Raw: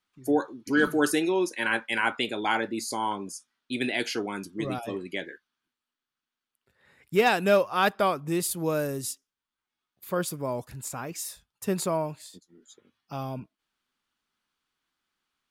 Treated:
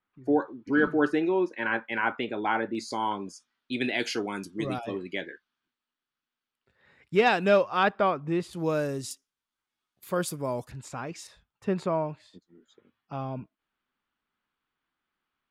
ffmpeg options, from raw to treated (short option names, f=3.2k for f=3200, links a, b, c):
-af "asetnsamples=n=441:p=0,asendcmd='2.75 lowpass f 4800;4.03 lowpass f 9900;4.78 lowpass f 4800;7.83 lowpass f 2600;8.53 lowpass f 6400;9.11 lowpass f 12000;10.71 lowpass f 4600;11.27 lowpass f 2600',lowpass=1.9k"